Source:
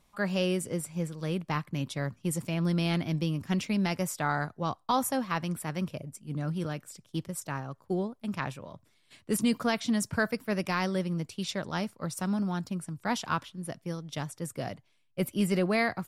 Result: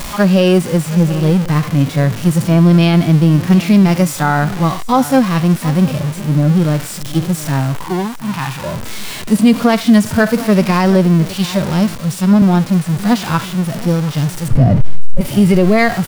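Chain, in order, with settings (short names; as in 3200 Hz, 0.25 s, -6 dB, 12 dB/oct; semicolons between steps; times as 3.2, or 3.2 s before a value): zero-crossing step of -33 dBFS; 7.84–8.64 resonant low shelf 720 Hz -7 dB, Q 3; harmonic-percussive split percussive -18 dB; 14.48–15.21 tilt -4.5 dB/oct; on a send: echo 0.721 s -18 dB; on the sum: maximiser +20 dB; 11.95–12.42 three-band expander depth 40%; gain -1.5 dB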